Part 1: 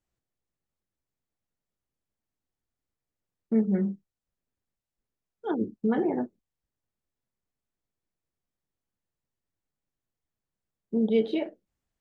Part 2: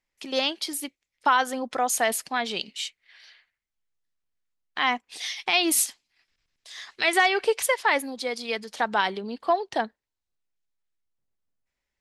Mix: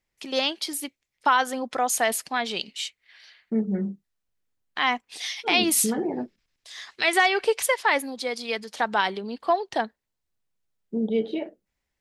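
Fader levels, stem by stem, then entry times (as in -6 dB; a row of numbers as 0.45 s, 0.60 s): -1.0 dB, +0.5 dB; 0.00 s, 0.00 s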